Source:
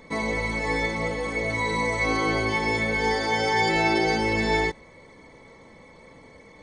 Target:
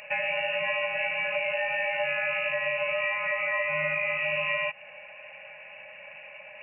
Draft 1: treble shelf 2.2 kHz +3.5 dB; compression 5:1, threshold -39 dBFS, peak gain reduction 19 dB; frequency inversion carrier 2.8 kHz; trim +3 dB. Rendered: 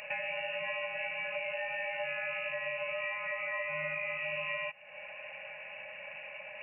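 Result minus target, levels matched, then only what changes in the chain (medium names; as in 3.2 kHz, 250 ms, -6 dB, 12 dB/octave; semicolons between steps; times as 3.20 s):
compression: peak gain reduction +8 dB
change: compression 5:1, threshold -29 dBFS, peak gain reduction 11 dB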